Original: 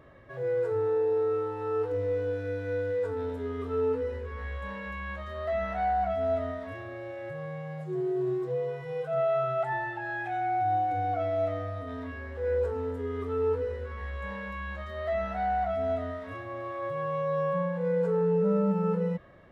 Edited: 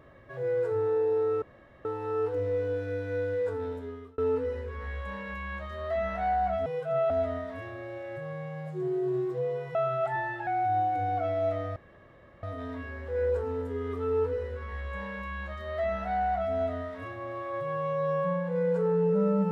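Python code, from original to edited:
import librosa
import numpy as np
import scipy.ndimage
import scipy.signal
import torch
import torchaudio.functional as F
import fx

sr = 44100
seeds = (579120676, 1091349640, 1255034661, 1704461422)

y = fx.edit(x, sr, fx.insert_room_tone(at_s=1.42, length_s=0.43),
    fx.fade_out_span(start_s=2.95, length_s=0.8, curve='qsin'),
    fx.move(start_s=8.88, length_s=0.44, to_s=6.23),
    fx.cut(start_s=10.04, length_s=0.39),
    fx.insert_room_tone(at_s=11.72, length_s=0.67), tone=tone)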